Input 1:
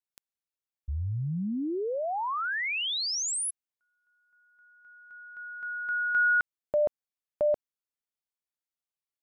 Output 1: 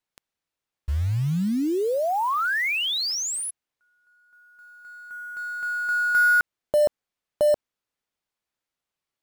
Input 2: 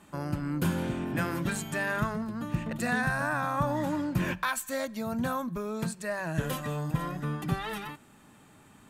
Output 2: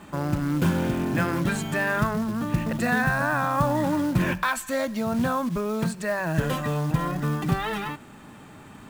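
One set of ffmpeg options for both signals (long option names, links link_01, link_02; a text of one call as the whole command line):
ffmpeg -i in.wav -filter_complex "[0:a]lowpass=frequency=3600:poles=1,asplit=2[link_01][link_02];[link_02]acompressor=threshold=-39dB:ratio=20:attack=0.26:release=29:knee=6:detection=rms,volume=1dB[link_03];[link_01][link_03]amix=inputs=2:normalize=0,acrusher=bits=5:mode=log:mix=0:aa=0.000001,volume=4.5dB" out.wav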